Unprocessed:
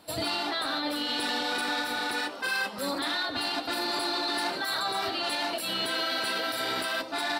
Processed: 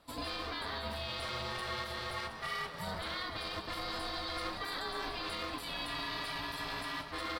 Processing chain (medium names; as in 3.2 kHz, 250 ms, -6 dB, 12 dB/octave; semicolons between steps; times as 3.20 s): treble shelf 5.9 kHz -7 dB; multi-tap echo 184/303/722 ms -14.5/-16.5/-13 dB; ring modulator 370 Hz; in parallel at -11.5 dB: short-mantissa float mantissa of 2-bit; on the sum: trim -7.5 dB